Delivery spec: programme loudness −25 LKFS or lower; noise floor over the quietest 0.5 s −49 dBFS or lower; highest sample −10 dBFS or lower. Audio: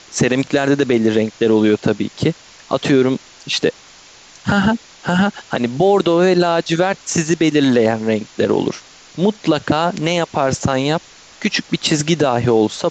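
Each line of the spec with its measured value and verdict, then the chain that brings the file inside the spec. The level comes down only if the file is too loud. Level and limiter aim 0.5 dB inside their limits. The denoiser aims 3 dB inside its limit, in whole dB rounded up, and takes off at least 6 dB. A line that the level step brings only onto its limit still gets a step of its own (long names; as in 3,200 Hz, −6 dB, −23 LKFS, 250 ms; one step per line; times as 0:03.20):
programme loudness −17.0 LKFS: out of spec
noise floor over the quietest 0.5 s −43 dBFS: out of spec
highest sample −4.0 dBFS: out of spec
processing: level −8.5 dB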